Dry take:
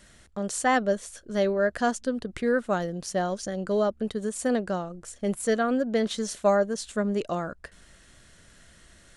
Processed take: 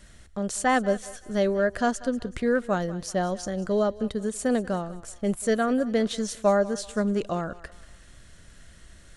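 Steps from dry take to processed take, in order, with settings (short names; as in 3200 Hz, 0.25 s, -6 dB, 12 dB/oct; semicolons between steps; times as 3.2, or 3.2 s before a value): low shelf 110 Hz +9 dB; on a send: thinning echo 0.189 s, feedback 45%, high-pass 510 Hz, level -17 dB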